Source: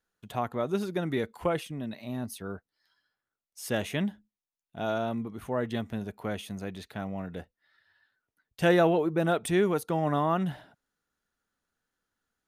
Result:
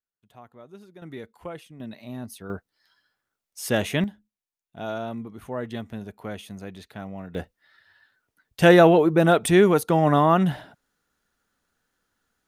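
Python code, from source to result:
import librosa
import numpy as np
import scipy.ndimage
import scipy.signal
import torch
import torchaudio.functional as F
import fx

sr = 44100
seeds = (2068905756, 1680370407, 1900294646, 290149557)

y = fx.gain(x, sr, db=fx.steps((0.0, -16.5), (1.02, -8.5), (1.8, -1.0), (2.5, 6.5), (4.04, -1.0), (7.35, 8.5)))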